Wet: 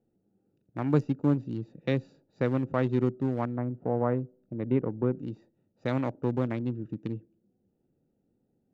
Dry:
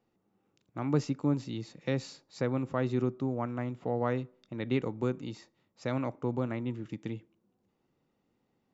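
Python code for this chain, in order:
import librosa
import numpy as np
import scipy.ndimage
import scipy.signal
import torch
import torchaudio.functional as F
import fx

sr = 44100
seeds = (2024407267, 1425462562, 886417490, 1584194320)

y = fx.wiener(x, sr, points=41)
y = fx.lowpass(y, sr, hz=1200.0, slope=12, at=(3.56, 5.15))
y = y * 10.0 ** (4.0 / 20.0)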